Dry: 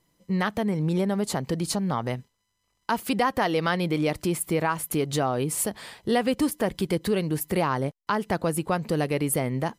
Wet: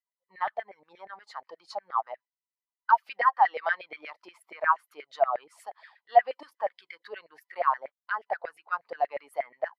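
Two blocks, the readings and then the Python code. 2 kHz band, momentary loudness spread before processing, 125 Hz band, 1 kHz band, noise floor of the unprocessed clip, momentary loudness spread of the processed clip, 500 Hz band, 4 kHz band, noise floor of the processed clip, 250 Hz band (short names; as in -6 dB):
-1.0 dB, 5 LU, under -40 dB, +3.0 dB, -76 dBFS, 22 LU, -6.0 dB, -14.5 dB, under -85 dBFS, under -30 dB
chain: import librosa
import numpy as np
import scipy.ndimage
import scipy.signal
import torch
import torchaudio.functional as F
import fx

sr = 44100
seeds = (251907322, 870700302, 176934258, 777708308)

y = fx.high_shelf_res(x, sr, hz=6700.0, db=-8.5, q=1.5)
y = fx.filter_lfo_highpass(y, sr, shape='saw_down', hz=8.4, low_hz=600.0, high_hz=2100.0, q=5.8)
y = fx.spectral_expand(y, sr, expansion=1.5)
y = y * librosa.db_to_amplitude(-3.5)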